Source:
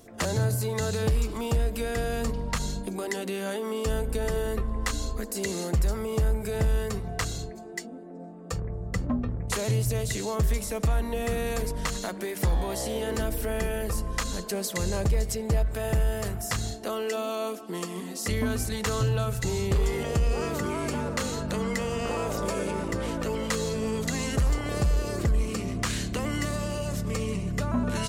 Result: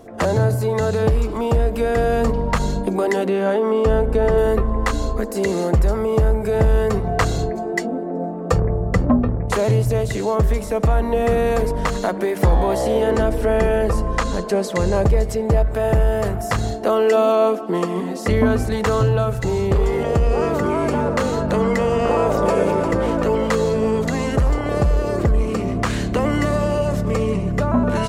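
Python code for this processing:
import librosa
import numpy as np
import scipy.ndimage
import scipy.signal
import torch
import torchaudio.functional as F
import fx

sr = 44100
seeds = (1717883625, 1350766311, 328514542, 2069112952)

y = fx.lowpass(x, sr, hz=3200.0, slope=6, at=(3.27, 4.38))
y = fx.lowpass(y, sr, hz=9900.0, slope=12, at=(13.11, 14.96))
y = fx.high_shelf(y, sr, hz=5100.0, db=-5.0, at=(17.32, 18.72))
y = fx.echo_throw(y, sr, start_s=22.1, length_s=0.49, ms=350, feedback_pct=35, wet_db=-8.0)
y = fx.high_shelf(y, sr, hz=2900.0, db=-10.5)
y = fx.rider(y, sr, range_db=10, speed_s=2.0)
y = fx.peak_eq(y, sr, hz=670.0, db=6.0, octaves=2.3)
y = F.gain(torch.from_numpy(y), 7.5).numpy()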